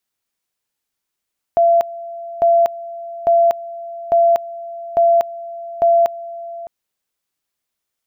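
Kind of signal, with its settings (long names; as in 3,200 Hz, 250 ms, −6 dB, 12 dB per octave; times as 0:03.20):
tone at two levels in turn 680 Hz −9 dBFS, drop 18 dB, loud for 0.24 s, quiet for 0.61 s, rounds 6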